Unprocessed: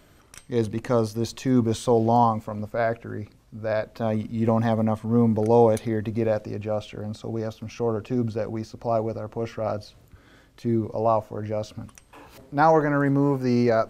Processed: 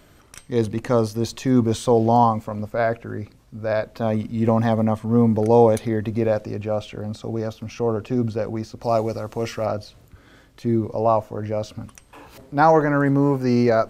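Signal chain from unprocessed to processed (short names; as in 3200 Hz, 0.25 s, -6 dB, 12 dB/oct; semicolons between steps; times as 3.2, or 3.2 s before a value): 8.82–9.66 high shelf 2600 Hz +12 dB; gain +3 dB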